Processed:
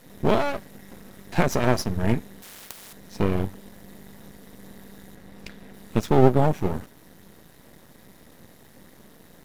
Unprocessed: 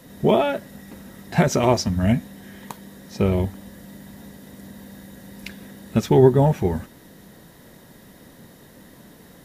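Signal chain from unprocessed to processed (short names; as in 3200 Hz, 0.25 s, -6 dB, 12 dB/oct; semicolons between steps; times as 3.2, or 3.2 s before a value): 5.15–5.74 high shelf 4900 Hz -8.5 dB; half-wave rectifier; 2.42–2.93 spectral compressor 4:1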